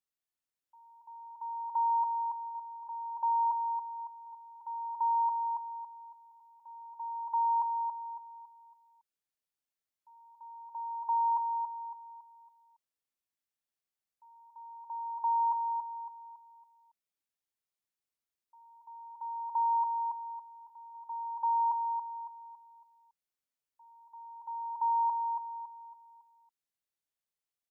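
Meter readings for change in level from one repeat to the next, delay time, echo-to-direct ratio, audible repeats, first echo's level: -8.0 dB, 278 ms, -4.5 dB, 4, -5.0 dB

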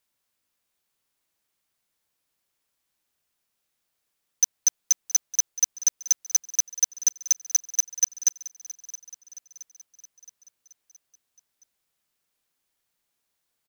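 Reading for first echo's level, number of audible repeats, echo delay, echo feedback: -17.5 dB, 4, 670 ms, 55%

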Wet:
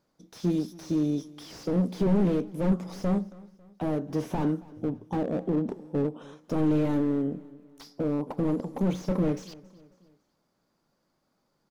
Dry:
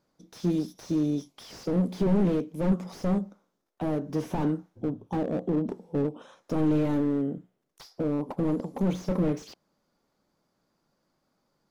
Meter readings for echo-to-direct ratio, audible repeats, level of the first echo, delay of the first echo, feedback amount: -21.0 dB, 2, -22.0 dB, 274 ms, 46%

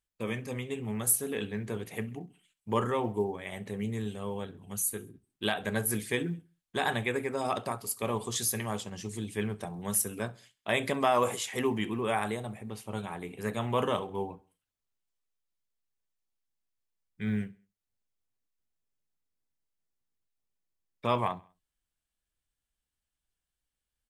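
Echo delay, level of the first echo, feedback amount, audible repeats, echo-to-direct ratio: 66 ms, -23.5 dB, 49%, 2, -22.5 dB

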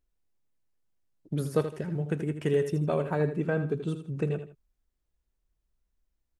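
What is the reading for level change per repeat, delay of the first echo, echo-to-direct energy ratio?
-11.0 dB, 80 ms, -9.5 dB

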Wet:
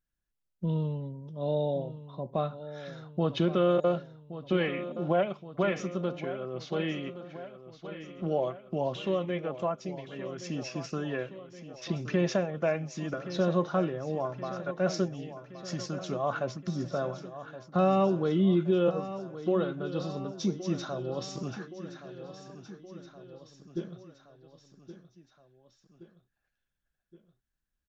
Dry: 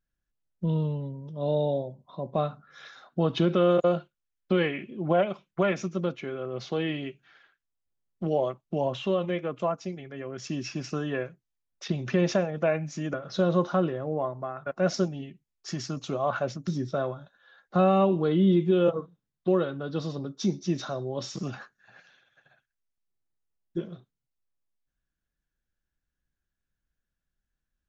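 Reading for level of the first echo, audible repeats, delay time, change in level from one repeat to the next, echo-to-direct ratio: -13.0 dB, 4, 1121 ms, -4.5 dB, -11.0 dB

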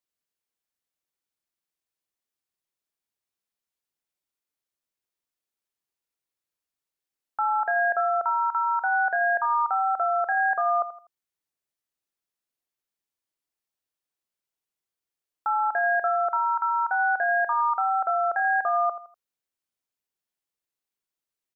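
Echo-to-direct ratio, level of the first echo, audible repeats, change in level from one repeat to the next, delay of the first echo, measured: -12.5 dB, -13.0 dB, 3, -9.5 dB, 82 ms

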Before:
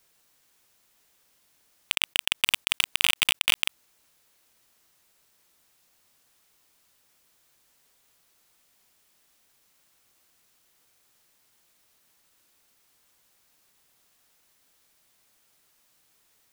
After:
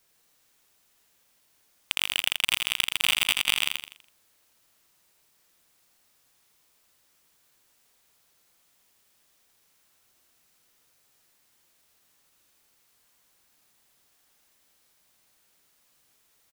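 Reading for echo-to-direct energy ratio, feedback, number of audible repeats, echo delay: -3.5 dB, 38%, 4, 82 ms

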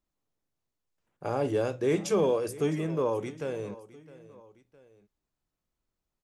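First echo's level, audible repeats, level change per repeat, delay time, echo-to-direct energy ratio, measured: -18.5 dB, 2, -6.0 dB, 661 ms, -17.5 dB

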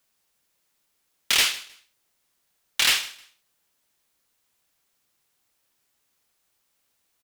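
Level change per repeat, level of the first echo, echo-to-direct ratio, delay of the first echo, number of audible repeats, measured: -12.0 dB, -20.0 dB, -19.5 dB, 156 ms, 2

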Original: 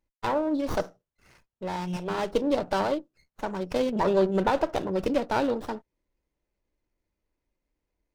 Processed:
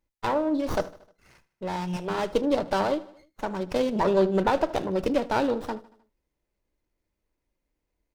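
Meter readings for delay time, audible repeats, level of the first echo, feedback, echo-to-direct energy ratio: 77 ms, 3, -19.5 dB, 54%, -18.0 dB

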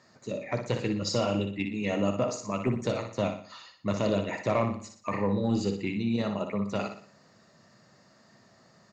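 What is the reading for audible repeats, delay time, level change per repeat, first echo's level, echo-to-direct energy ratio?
4, 60 ms, -7.5 dB, -7.0 dB, -6.0 dB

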